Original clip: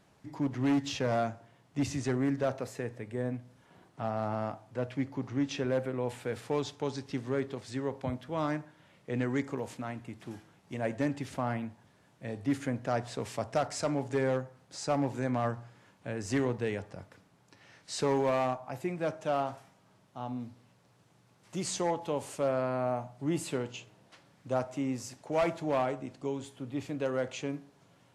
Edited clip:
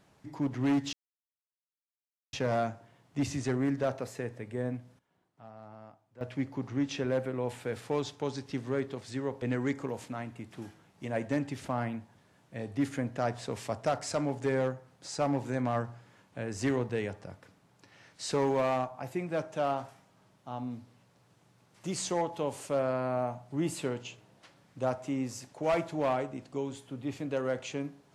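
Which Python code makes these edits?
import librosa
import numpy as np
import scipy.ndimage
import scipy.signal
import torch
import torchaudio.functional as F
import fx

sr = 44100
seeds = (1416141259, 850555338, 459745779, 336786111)

y = fx.edit(x, sr, fx.insert_silence(at_s=0.93, length_s=1.4),
    fx.fade_down_up(start_s=3.32, length_s=1.76, db=-16.5, fade_s=0.27, curve='log'),
    fx.cut(start_s=8.02, length_s=1.09), tone=tone)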